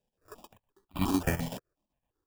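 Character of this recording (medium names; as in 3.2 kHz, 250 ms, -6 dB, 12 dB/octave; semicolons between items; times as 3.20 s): chopped level 7.9 Hz, depth 65%, duty 70%; aliases and images of a low sample rate 2.1 kHz, jitter 0%; notches that jump at a steady rate 5.7 Hz 330–1700 Hz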